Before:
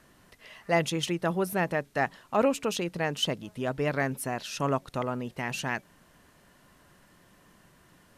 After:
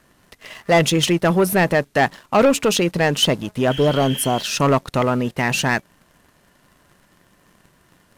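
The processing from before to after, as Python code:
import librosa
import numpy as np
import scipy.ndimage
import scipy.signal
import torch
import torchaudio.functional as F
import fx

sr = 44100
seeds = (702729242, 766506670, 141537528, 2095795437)

y = fx.spec_repair(x, sr, seeds[0], start_s=3.73, length_s=0.65, low_hz=1500.0, high_hz=3400.0, source='after')
y = fx.leveller(y, sr, passes=2)
y = F.gain(torch.from_numpy(y), 6.0).numpy()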